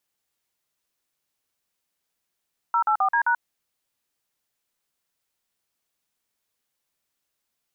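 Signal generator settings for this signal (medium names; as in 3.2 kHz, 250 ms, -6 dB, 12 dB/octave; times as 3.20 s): DTMF "084D#", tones 85 ms, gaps 46 ms, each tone -20.5 dBFS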